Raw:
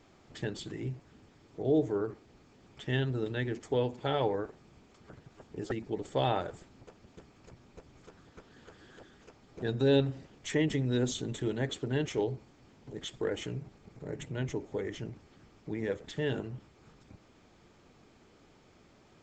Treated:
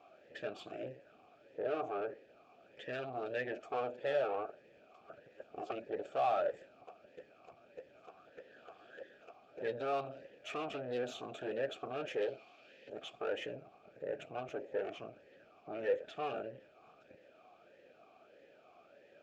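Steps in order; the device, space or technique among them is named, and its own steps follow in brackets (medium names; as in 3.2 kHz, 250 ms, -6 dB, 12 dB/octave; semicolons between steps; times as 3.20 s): 12.21–12.90 s: frequency weighting D; talk box (valve stage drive 36 dB, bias 0.65; talking filter a-e 1.6 Hz); trim +15 dB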